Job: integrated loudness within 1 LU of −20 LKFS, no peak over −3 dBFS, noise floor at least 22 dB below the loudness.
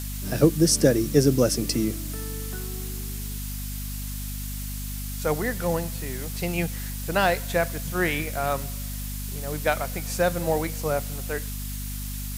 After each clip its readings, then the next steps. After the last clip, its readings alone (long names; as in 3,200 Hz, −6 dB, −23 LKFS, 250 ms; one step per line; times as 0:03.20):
mains hum 50 Hz; hum harmonics up to 250 Hz; level of the hum −31 dBFS; background noise floor −32 dBFS; target noise floor −49 dBFS; integrated loudness −26.5 LKFS; sample peak −5.0 dBFS; target loudness −20.0 LKFS
→ mains-hum notches 50/100/150/200/250 Hz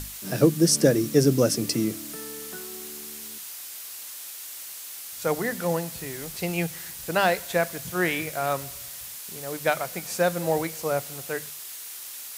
mains hum none found; background noise floor −39 dBFS; target noise floor −49 dBFS
→ broadband denoise 10 dB, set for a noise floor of −39 dBFS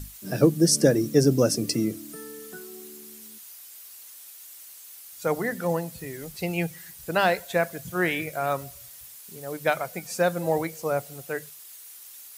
background noise floor −46 dBFS; target noise floor −48 dBFS
→ broadband denoise 6 dB, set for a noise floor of −46 dBFS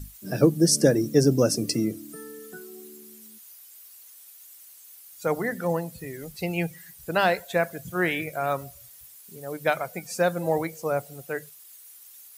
background noise floor −49 dBFS; integrated loudness −25.5 LKFS; sample peak −5.5 dBFS; target loudness −20.0 LKFS
→ level +5.5 dB
brickwall limiter −3 dBFS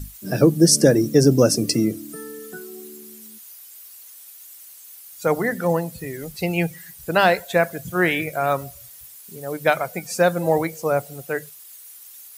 integrated loudness −20.5 LKFS; sample peak −3.0 dBFS; background noise floor −44 dBFS